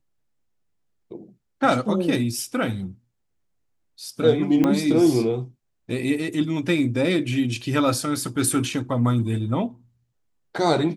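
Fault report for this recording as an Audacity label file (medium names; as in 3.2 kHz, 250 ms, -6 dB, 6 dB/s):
4.640000	4.640000	pop -9 dBFS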